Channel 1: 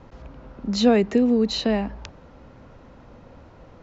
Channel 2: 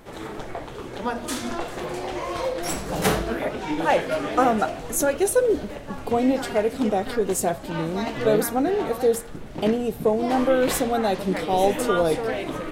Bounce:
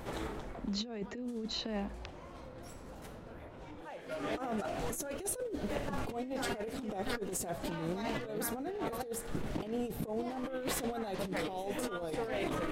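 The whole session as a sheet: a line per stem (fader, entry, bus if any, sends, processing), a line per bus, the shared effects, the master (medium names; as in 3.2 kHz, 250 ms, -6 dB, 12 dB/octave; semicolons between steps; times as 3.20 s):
-6.5 dB, 0.00 s, no send, level-controlled noise filter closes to 2.5 kHz; compression 1.5:1, threshold -40 dBFS, peak gain reduction 10 dB
-1.5 dB, 0.00 s, no send, compression 10:1, threshold -29 dBFS, peak gain reduction 15.5 dB; auto duck -21 dB, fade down 0.80 s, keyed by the first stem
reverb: none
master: compressor with a negative ratio -36 dBFS, ratio -0.5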